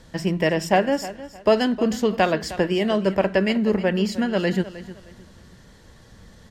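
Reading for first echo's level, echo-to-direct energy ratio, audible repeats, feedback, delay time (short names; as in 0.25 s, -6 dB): -15.5 dB, -15.0 dB, 2, 27%, 0.31 s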